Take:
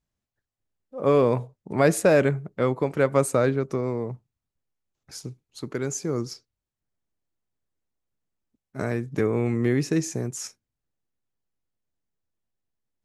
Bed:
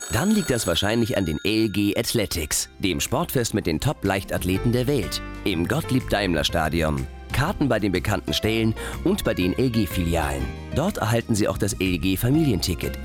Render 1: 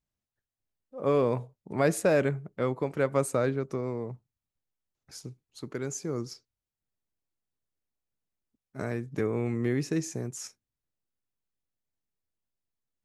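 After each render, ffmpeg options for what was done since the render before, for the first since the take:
-af "volume=-5.5dB"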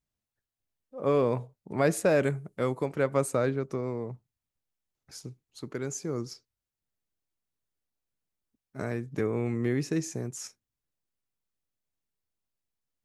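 -filter_complex "[0:a]asettb=1/sr,asplit=3[a][b][c];[a]atrim=end=2.234[d];[b]atrim=start=2.23:end=2.86,asetpts=PTS-STARTPTS,afade=t=in:d=0.004:c=qsin,afade=t=out:st=0.626:d=0.004:c=qsin,equalizer=f=9.6k:t=o:w=1.1:g=13.5[e];[c]atrim=start=2.856[f];[d][e]acrossfade=d=0.004:c1=hsin:c2=qsin[g];[g][f]acrossfade=d=0.004:c1=qsin:c2=hsin"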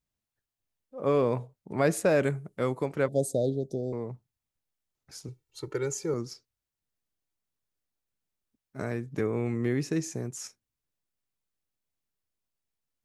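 -filter_complex "[0:a]asettb=1/sr,asplit=3[a][b][c];[a]atrim=end=3.084[d];[b]atrim=start=3.08:end=3.93,asetpts=PTS-STARTPTS,afade=t=in:d=0.004:c=qsin,afade=t=out:st=0.846:d=0.004:c=qsin,asuperstop=centerf=1600:order=20:qfactor=0.63[e];[c]atrim=start=3.926[f];[d][e]acrossfade=d=0.004:c1=hsin:c2=qsin[g];[g][f]acrossfade=d=0.004:c1=qsin:c2=hsin,asettb=1/sr,asplit=3[h][i][j];[h]atrim=end=5.284[k];[i]atrim=start=5.28:end=6.14,asetpts=PTS-STARTPTS,afade=t=in:d=0.004:c=qsin,afade=t=out:st=0.856:d=0.004:c=qsin,aecho=1:1:2.2:0.98,atrim=end_sample=37926[l];[j]atrim=start=6.136[m];[k][l]acrossfade=d=0.004:c1=hsin:c2=qsin[n];[n][m]acrossfade=d=0.004:c1=qsin:c2=hsin"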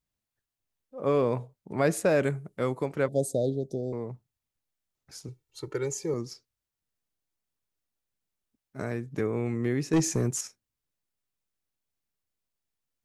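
-filter_complex "[0:a]asettb=1/sr,asplit=3[a][b][c];[a]atrim=end=5.844[d];[b]atrim=start=5.84:end=6.31,asetpts=PTS-STARTPTS,afade=t=in:d=0.004:c=qsin,afade=t=out:st=0.466:d=0.004:c=qsin,asuperstop=centerf=1400:order=4:qfactor=5[e];[c]atrim=start=6.306[f];[d][e]acrossfade=d=0.004:c1=hsin:c2=qsin[g];[g][f]acrossfade=d=0.004:c1=qsin:c2=hsin,asettb=1/sr,asplit=3[h][i][j];[h]atrim=end=9.934[k];[i]atrim=start=9.93:end=10.41,asetpts=PTS-STARTPTS,afade=t=in:d=0.004:c=qsin,afade=t=out:st=0.476:d=0.004:c=qsin,aeval=exprs='0.133*sin(PI/2*1.78*val(0)/0.133)':c=same[l];[j]atrim=start=10.406[m];[k][l]acrossfade=d=0.004:c1=hsin:c2=qsin[n];[n][m]acrossfade=d=0.004:c1=qsin:c2=hsin"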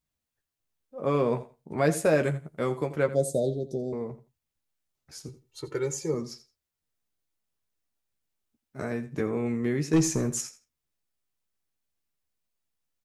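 -filter_complex "[0:a]asplit=2[a][b];[b]adelay=13,volume=-7dB[c];[a][c]amix=inputs=2:normalize=0,aecho=1:1:84|168:0.178|0.032"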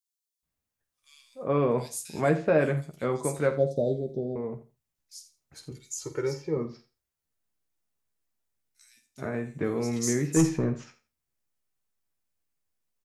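-filter_complex "[0:a]asplit=2[a][b];[b]adelay=49,volume=-12.5dB[c];[a][c]amix=inputs=2:normalize=0,acrossover=split=3600[d][e];[d]adelay=430[f];[f][e]amix=inputs=2:normalize=0"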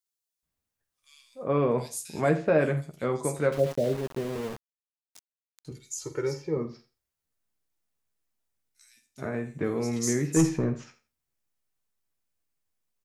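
-filter_complex "[0:a]asettb=1/sr,asplit=3[a][b][c];[a]atrim=end=3.524[d];[b]atrim=start=3.52:end=5.65,asetpts=PTS-STARTPTS,afade=t=in:d=0.004:c=qsin,afade=t=out:st=2.126:d=0.004:c=qsin,aeval=exprs='val(0)*gte(abs(val(0)),0.0168)':c=same[e];[c]atrim=start=5.646[f];[d][e]acrossfade=d=0.004:c1=hsin:c2=qsin[g];[g][f]acrossfade=d=0.004:c1=qsin:c2=hsin"

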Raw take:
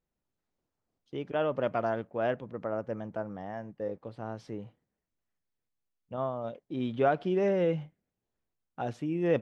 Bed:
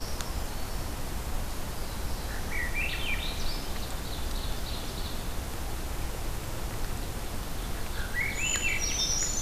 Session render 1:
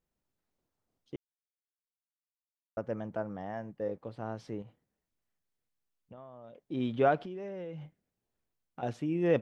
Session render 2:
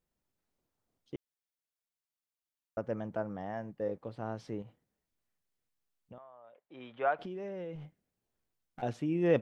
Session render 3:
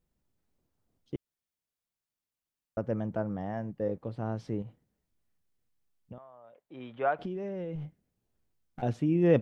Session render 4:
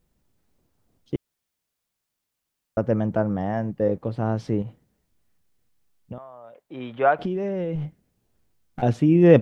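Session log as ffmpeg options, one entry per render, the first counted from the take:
-filter_complex "[0:a]asettb=1/sr,asplit=3[a][b][c];[a]atrim=end=4.624[d];[b]atrim=start=4.62:end=6.66,asetpts=PTS-STARTPTS,afade=t=in:d=0.004:c=qsin,afade=t=out:st=2.036:d=0.004:c=qsin,acompressor=threshold=-47dB:ratio=6:attack=3.2:release=140:knee=1:detection=peak[e];[c]atrim=start=6.656[f];[d][e]acrossfade=d=0.004:c1=hsin:c2=qsin[g];[g][f]acrossfade=d=0.004:c1=qsin:c2=hsin,asettb=1/sr,asplit=3[h][i][j];[h]atrim=end=7.224[k];[i]atrim=start=7.22:end=8.83,asetpts=PTS-STARTPTS,afade=t=in:d=0.004:c=qsin,afade=t=out:st=1.606:d=0.004:c=qsin,acompressor=threshold=-39dB:ratio=6:attack=3.2:release=140:knee=1:detection=peak[l];[j]atrim=start=8.826[m];[k][l]acrossfade=d=0.004:c1=hsin:c2=qsin[n];[n][m]acrossfade=d=0.004:c1=qsin:c2=hsin,asplit=3[o][p][q];[o]atrim=end=1.16,asetpts=PTS-STARTPTS,afade=t=out:st=1.156:d=0.004:c=hsin[r];[p]atrim=start=1.16:end=2.77,asetpts=PTS-STARTPTS,volume=0[s];[q]atrim=start=2.77,asetpts=PTS-STARTPTS,afade=t=in:d=0.004:c=hsin[t];[r][s][t]concat=n=3:v=0:a=1"
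-filter_complex "[0:a]asettb=1/sr,asplit=3[a][b][c];[a]atrim=end=6.184[d];[b]atrim=start=6.18:end=7.19,asetpts=PTS-STARTPTS,afade=t=in:d=0.004:c=qsin,afade=t=out:st=1.006:d=0.004:c=qsin,acrossover=split=600 2600:gain=0.0891 1 0.126[e][f][g];[e][f][g]amix=inputs=3:normalize=0[h];[c]atrim=start=7.186[i];[d][h]acrossfade=d=0.004:c1=hsin:c2=qsin[j];[j][i]acrossfade=d=0.004:c1=qsin:c2=hsin,asettb=1/sr,asplit=3[k][l][m];[k]atrim=end=7.754[n];[l]atrim=start=7.75:end=8.82,asetpts=PTS-STARTPTS,afade=t=in:d=0.004:c=qsin,afade=t=out:st=1.066:d=0.004:c=qsin,aeval=exprs='clip(val(0),-1,0.00562)':c=same[o];[m]atrim=start=8.816[p];[n][o]acrossfade=d=0.004:c1=hsin:c2=qsin[q];[q][p]acrossfade=d=0.004:c1=qsin:c2=hsin"
-af "lowshelf=f=320:g=9.5"
-af "volume=9.5dB"

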